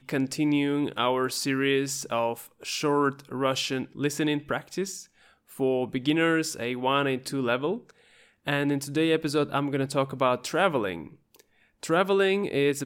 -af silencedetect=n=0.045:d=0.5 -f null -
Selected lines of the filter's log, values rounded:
silence_start: 4.92
silence_end: 5.60 | silence_duration: 0.68
silence_start: 7.75
silence_end: 8.48 | silence_duration: 0.73
silence_start: 11.00
silence_end: 11.83 | silence_duration: 0.83